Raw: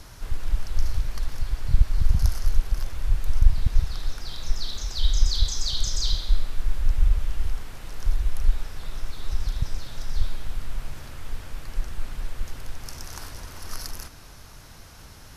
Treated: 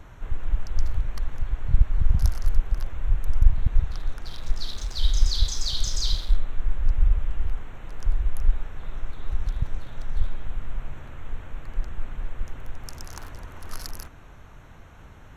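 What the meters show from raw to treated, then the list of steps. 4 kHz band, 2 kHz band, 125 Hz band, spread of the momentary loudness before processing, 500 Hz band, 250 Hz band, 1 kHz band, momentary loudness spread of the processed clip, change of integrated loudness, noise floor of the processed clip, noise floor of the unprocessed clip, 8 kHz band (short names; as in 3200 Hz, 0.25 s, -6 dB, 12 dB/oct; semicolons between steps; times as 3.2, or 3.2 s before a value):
-1.5 dB, -2.0 dB, 0.0 dB, 15 LU, 0.0 dB, 0.0 dB, -0.5 dB, 16 LU, 0.0 dB, -46 dBFS, -45 dBFS, n/a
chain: Wiener smoothing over 9 samples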